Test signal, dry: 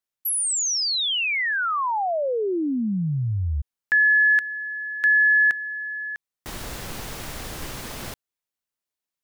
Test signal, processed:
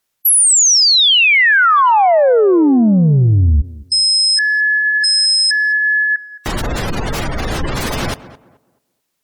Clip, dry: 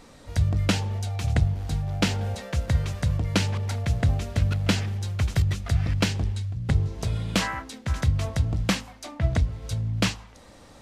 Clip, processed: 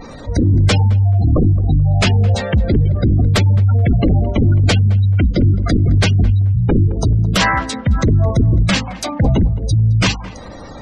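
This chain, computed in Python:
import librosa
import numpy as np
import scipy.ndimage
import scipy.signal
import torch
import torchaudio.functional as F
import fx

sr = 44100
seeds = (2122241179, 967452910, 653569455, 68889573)

y = fx.fold_sine(x, sr, drive_db=14, ceiling_db=-7.5)
y = fx.spec_gate(y, sr, threshold_db=-20, keep='strong')
y = fx.echo_tape(y, sr, ms=216, feedback_pct=30, wet_db=-14.0, lp_hz=1300.0, drive_db=6.0, wow_cents=13)
y = y * librosa.db_to_amplitude(-1.0)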